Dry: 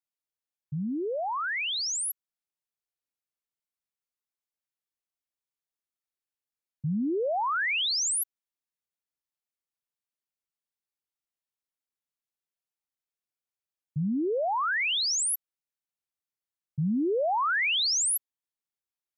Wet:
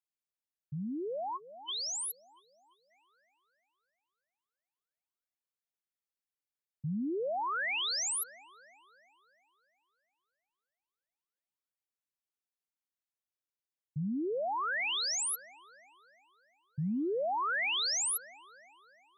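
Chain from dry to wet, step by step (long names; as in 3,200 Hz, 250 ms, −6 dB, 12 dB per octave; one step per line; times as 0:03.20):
delay with a band-pass on its return 342 ms, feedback 51%, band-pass 980 Hz, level −13 dB
time-frequency box erased 0:00.76–0:02.91, 1,100–3,000 Hz
level −6 dB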